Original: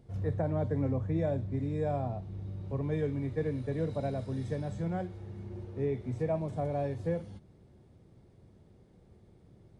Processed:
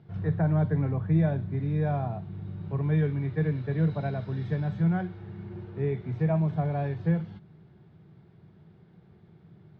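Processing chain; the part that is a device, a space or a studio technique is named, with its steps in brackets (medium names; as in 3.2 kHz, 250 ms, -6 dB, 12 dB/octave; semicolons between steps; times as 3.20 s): guitar cabinet (cabinet simulation 110–4000 Hz, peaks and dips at 160 Hz +9 dB, 260 Hz -8 dB, 530 Hz -10 dB, 1.5 kHz +6 dB); trim +4.5 dB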